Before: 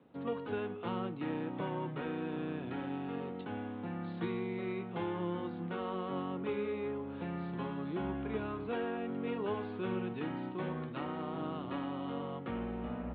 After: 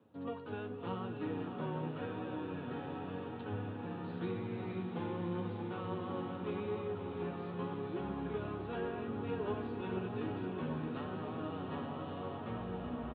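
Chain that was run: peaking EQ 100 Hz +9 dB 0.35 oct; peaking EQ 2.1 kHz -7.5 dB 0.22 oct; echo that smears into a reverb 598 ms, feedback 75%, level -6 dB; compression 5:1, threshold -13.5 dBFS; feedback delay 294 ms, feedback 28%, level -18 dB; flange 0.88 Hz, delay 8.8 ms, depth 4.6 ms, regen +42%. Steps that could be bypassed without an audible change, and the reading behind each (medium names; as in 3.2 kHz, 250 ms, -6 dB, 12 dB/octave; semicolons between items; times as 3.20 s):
compression, threshold -13.5 dBFS: peak at its input -22.0 dBFS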